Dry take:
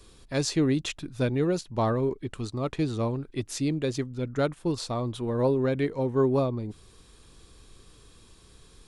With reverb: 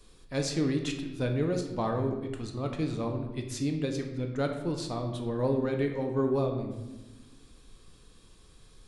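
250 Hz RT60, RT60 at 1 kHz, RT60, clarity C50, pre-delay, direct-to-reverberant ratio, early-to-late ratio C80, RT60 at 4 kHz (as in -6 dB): 1.9 s, 0.95 s, 1.1 s, 6.5 dB, 4 ms, 3.0 dB, 8.5 dB, 0.75 s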